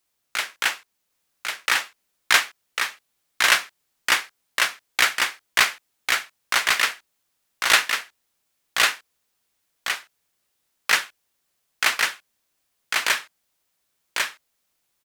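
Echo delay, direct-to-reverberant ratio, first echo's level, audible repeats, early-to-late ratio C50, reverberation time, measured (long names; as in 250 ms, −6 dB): 1,098 ms, no reverb audible, −3.0 dB, 1, no reverb audible, no reverb audible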